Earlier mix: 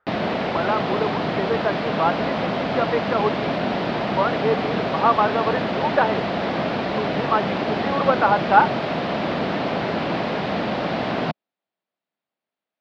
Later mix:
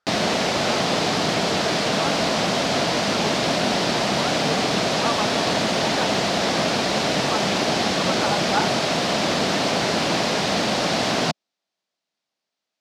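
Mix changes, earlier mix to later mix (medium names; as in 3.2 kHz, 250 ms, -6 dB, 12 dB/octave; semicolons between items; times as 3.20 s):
speech -11.5 dB; master: remove distance through air 390 m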